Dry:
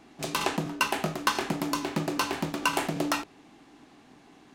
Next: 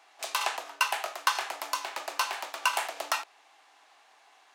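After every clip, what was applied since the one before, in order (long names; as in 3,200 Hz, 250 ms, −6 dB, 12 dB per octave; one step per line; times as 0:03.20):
high-pass filter 660 Hz 24 dB per octave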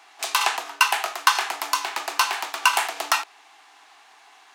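parametric band 560 Hz −13.5 dB 0.28 octaves
level +8.5 dB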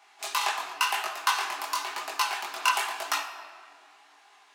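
rectangular room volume 3,900 cubic metres, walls mixed, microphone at 1.3 metres
multi-voice chorus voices 2, 0.94 Hz, delay 21 ms, depth 3.7 ms
level −4 dB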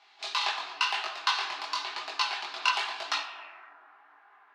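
low-pass filter sweep 4,200 Hz → 1,500 Hz, 0:03.22–0:03.76
level −4 dB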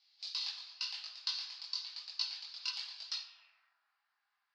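resonant band-pass 4,800 Hz, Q 6.1
level +1 dB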